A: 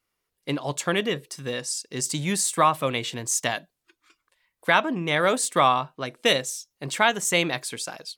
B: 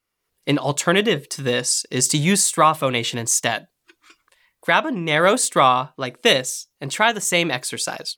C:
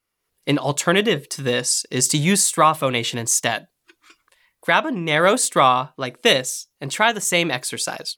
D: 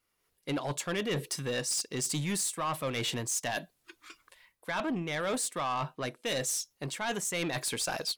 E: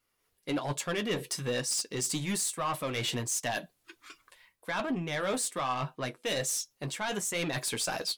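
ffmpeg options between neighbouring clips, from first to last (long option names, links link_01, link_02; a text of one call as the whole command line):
ffmpeg -i in.wav -af "dynaudnorm=framelen=180:gausssize=3:maxgain=10.5dB,volume=-1dB" out.wav
ffmpeg -i in.wav -af "equalizer=frequency=11000:width=7.8:gain=5" out.wav
ffmpeg -i in.wav -af "areverse,acompressor=threshold=-26dB:ratio=8,areverse,asoftclip=type=tanh:threshold=-26dB" out.wav
ffmpeg -i in.wav -af "flanger=delay=7.2:depth=3.4:regen=-42:speed=1.2:shape=sinusoidal,volume=4.5dB" out.wav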